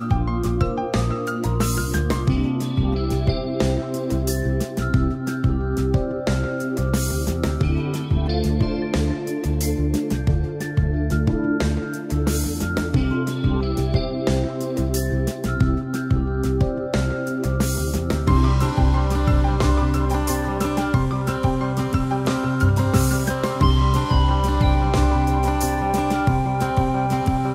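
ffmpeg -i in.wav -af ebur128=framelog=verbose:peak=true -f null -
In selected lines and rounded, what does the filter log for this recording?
Integrated loudness:
  I:         -21.6 LUFS
  Threshold: -31.6 LUFS
Loudness range:
  LRA:         3.1 LU
  Threshold: -41.6 LUFS
  LRA low:   -22.7 LUFS
  LRA high:  -19.6 LUFS
True peak:
  Peak:       -4.6 dBFS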